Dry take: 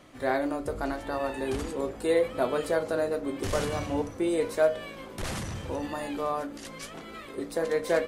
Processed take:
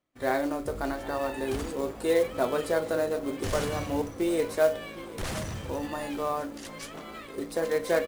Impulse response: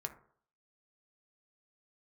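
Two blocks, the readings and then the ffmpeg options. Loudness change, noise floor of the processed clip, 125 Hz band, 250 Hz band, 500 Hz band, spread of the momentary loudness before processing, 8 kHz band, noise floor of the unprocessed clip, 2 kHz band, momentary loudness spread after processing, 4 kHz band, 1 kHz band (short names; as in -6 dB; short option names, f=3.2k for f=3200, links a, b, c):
0.0 dB, -43 dBFS, 0.0 dB, 0.0 dB, 0.0 dB, 12 LU, +1.0 dB, -44 dBFS, 0.0 dB, 12 LU, +0.5 dB, 0.0 dB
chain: -af "acrusher=bits=5:mode=log:mix=0:aa=0.000001,aecho=1:1:754:0.112,agate=range=-29dB:threshold=-44dB:ratio=16:detection=peak"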